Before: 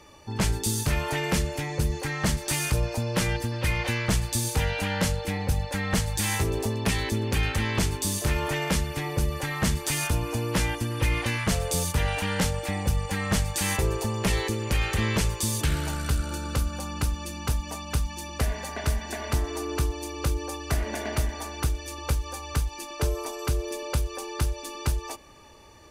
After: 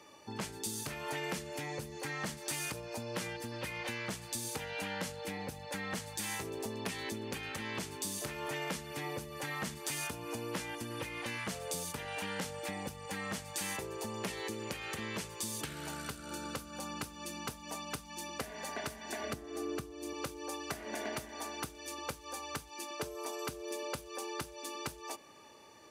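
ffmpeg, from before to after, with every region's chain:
ffmpeg -i in.wav -filter_complex "[0:a]asettb=1/sr,asplit=3[link_01][link_02][link_03];[link_01]atrim=end=19.234[link_04];[link_02]atrim=start=19.23:end=20.13,asetpts=PTS-STARTPTS,afade=type=in:duration=0.004:curve=qsin,afade=type=out:start_time=0.896:duration=0.004:curve=qsin,asuperstop=centerf=940:order=8:qfactor=6,lowshelf=frequency=480:gain=8.5[link_05];[link_03]atrim=start=20.126[link_06];[link_04][link_05]acrossfade=duration=0.004:curve1=hsin:curve2=qsin[link_07];[link_07][link_06]acrossfade=duration=0.004:curve1=qsin:curve2=hsin,acompressor=threshold=-29dB:ratio=6,highpass=190,volume=-4.5dB" out.wav

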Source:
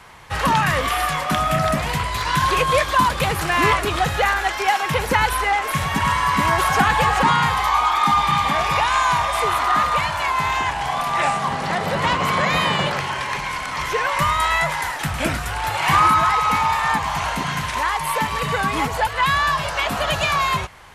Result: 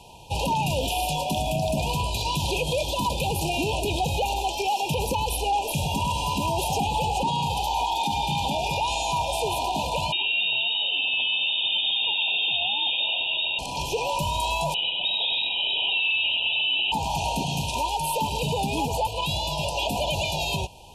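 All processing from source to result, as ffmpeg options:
ffmpeg -i in.wav -filter_complex "[0:a]asettb=1/sr,asplit=3[link_01][link_02][link_03];[link_01]atrim=end=10.124[link_04];[link_02]atrim=start=10.12:end=13.59,asetpts=PTS-STARTPTS,afade=type=in:duration=0.004:curve=qsin,afade=type=out:start_time=3.466:duration=0.004:curve=qsin,lowshelf=frequency=240:gain=9.5,lowpass=frequency=3200:width_type=q:width=0.5098,lowpass=frequency=3200:width_type=q:width=0.6013,lowpass=frequency=3200:width_type=q:width=0.9,lowpass=frequency=3200:width_type=q:width=2.563,afreqshift=-3800[link_05];[link_03]atrim=start=13.586[link_06];[link_04][link_05]acrossfade=duration=0.004:curve1=hsin:curve2=qsin[link_07];[link_07][link_06]acrossfade=duration=0.004:curve1=qsin:curve2=hsin,asettb=1/sr,asplit=3[link_08][link_09][link_10];[link_08]atrim=end=14.744[link_11];[link_09]atrim=start=14.74:end=16.92,asetpts=PTS-STARTPTS,afade=type=in:duration=0.004:curve=qsin,afade=type=out:start_time=2.176:duration=0.004:curve=qsin,aecho=1:1:98:0.668,atrim=end_sample=96138,lowpass=frequency=3300:width_type=q:width=0.5098,lowpass=frequency=3300:width_type=q:width=0.6013,lowpass=frequency=3300:width_type=q:width=0.9,lowpass=frequency=3300:width_type=q:width=2.563,afreqshift=-3900[link_12];[link_10]atrim=start=16.916[link_13];[link_11][link_12]acrossfade=duration=0.004:curve1=hsin:curve2=qsin[link_14];[link_14][link_13]acrossfade=duration=0.004:curve1=qsin:curve2=hsin,afftfilt=real='re*(1-between(b*sr/4096,1000,2400))':imag='im*(1-between(b*sr/4096,1000,2400))':win_size=4096:overlap=0.75,alimiter=limit=-17dB:level=0:latency=1:release=32" out.wav

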